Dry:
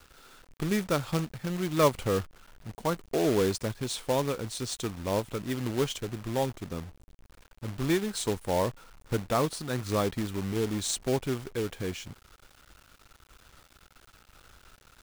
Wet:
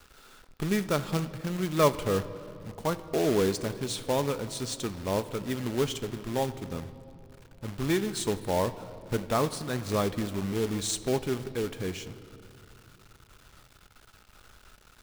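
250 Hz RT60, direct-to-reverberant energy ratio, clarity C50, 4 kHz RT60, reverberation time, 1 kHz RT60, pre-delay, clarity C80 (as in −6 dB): 3.8 s, 11.5 dB, 14.5 dB, 1.9 s, 2.9 s, 2.6 s, 5 ms, 15.0 dB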